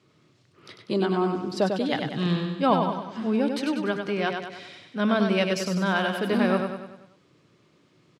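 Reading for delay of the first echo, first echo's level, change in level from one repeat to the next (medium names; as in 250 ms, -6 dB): 97 ms, -5.5 dB, -6.0 dB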